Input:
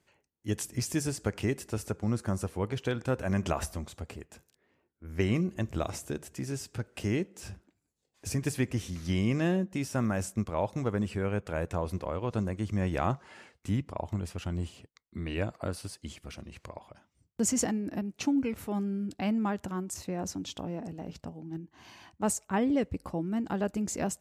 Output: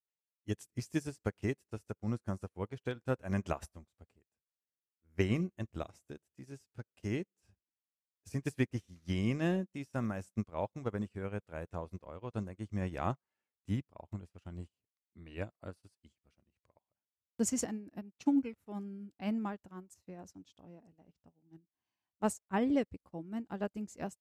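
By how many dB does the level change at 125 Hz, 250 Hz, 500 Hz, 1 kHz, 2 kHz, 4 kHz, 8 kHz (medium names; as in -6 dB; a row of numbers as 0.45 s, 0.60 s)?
-7.0 dB, -5.5 dB, -6.0 dB, -6.5 dB, -6.0 dB, -9.5 dB, -9.5 dB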